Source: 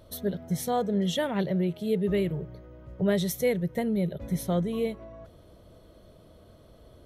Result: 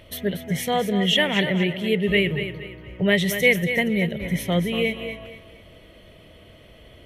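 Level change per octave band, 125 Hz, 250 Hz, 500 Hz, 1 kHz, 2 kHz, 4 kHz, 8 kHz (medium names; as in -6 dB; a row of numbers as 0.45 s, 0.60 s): +4.5 dB, +4.5 dB, +4.5 dB, +4.5 dB, +18.0 dB, +15.0 dB, +4.5 dB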